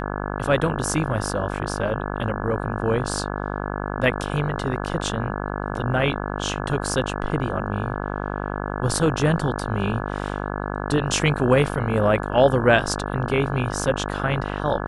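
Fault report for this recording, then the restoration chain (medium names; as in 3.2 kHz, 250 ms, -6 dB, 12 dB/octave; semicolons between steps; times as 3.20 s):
buzz 50 Hz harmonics 34 -28 dBFS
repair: de-hum 50 Hz, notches 34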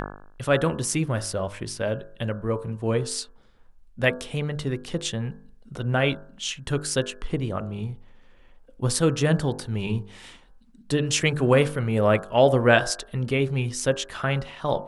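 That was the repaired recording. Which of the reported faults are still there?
nothing left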